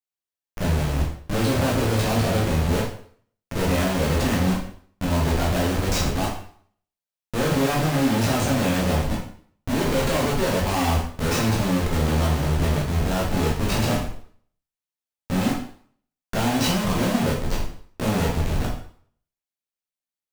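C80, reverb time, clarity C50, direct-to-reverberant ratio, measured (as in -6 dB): 8.5 dB, 0.55 s, 4.5 dB, -4.0 dB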